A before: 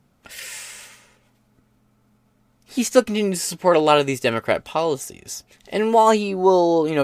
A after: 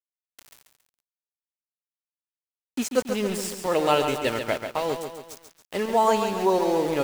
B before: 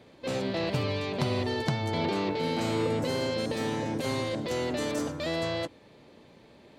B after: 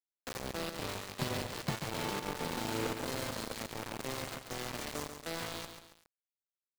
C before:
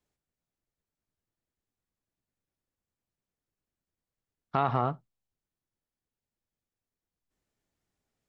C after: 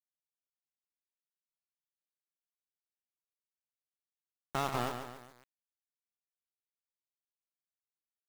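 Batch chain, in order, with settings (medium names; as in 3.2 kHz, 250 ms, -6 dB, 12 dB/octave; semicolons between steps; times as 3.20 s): volume shaper 82 bpm, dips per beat 1, -8 dB, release 154 ms; small samples zeroed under -25.5 dBFS; bit-crushed delay 138 ms, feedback 55%, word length 7-bit, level -7 dB; trim -6 dB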